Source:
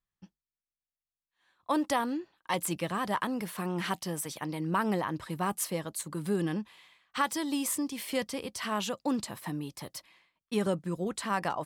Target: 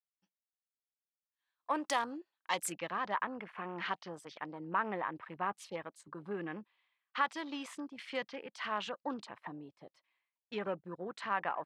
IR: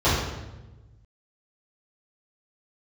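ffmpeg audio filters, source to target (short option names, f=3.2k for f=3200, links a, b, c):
-af "highpass=f=960:p=1,afwtdn=0.00447,asetnsamples=n=441:p=0,asendcmd='2.72 lowpass f 2700',lowpass=9k"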